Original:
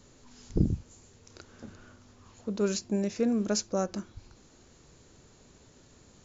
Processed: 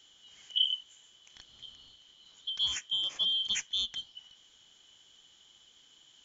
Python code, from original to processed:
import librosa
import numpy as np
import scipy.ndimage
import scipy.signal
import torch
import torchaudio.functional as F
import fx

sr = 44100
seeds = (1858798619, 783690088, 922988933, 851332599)

y = fx.band_shuffle(x, sr, order='2413')
y = y * librosa.db_to_amplitude(-3.5)